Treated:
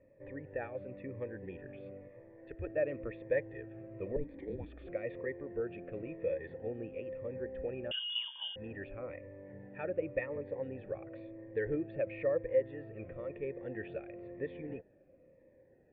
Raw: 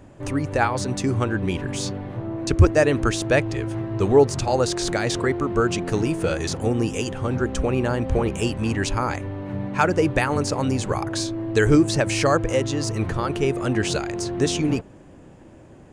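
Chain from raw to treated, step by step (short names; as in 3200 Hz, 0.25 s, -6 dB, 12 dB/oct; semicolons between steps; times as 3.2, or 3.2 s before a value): 2.08–2.67 bell 160 Hz -9 dB 2.9 oct; 4.16–4.87 frequency shift -410 Hz; vocal tract filter e; 7.91–8.56 inverted band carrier 3400 Hz; cascading phaser falling 0.98 Hz; gain -4 dB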